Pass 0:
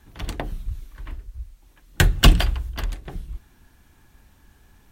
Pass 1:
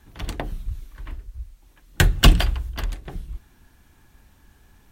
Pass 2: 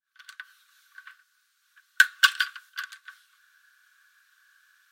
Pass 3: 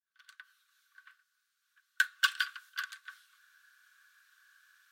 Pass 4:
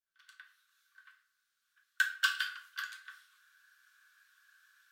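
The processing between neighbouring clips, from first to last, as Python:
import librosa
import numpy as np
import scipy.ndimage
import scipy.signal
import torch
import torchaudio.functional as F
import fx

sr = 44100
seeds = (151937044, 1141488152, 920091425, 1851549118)

y1 = x
y2 = fx.fade_in_head(y1, sr, length_s=0.74)
y2 = scipy.signal.sosfilt(scipy.signal.cheby1(6, 6, 1100.0, 'highpass', fs=sr, output='sos'), y2)
y2 = fx.peak_eq(y2, sr, hz=1500.0, db=12.0, octaves=0.24)
y3 = fx.rider(y2, sr, range_db=4, speed_s=0.5)
y3 = y3 * librosa.db_to_amplitude(-6.5)
y4 = fx.room_shoebox(y3, sr, seeds[0], volume_m3=65.0, walls='mixed', distance_m=0.54)
y4 = y4 * librosa.db_to_amplitude(-3.5)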